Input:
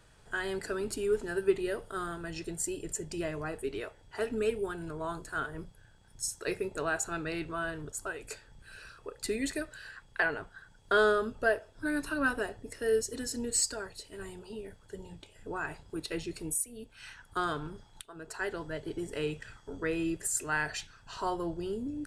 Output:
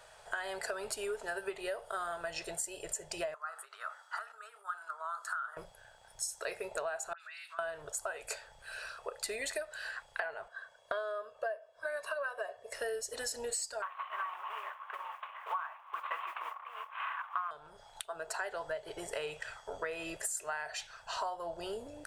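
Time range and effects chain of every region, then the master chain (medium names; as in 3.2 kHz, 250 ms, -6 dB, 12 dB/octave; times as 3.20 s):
3.34–5.57 s: peaking EQ 2.4 kHz -9.5 dB 0.68 oct + compression 16:1, threshold -44 dBFS + resonant high-pass 1.3 kHz, resonance Q 7.8
7.13–7.59 s: high-pass 1.4 kHz 24 dB/octave + phase dispersion highs, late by 74 ms, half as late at 3 kHz + compression 5:1, threshold -52 dBFS
10.48–12.73 s: high-pass 540 Hz 6 dB/octave + treble shelf 2.7 kHz -9.5 dB + comb 1.8 ms, depth 68%
13.82–17.51 s: CVSD coder 16 kbps + modulation noise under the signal 32 dB + resonant high-pass 1.1 kHz, resonance Q 13
whole clip: resonant low shelf 420 Hz -14 dB, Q 3; compression 16:1, threshold -39 dBFS; trim +5 dB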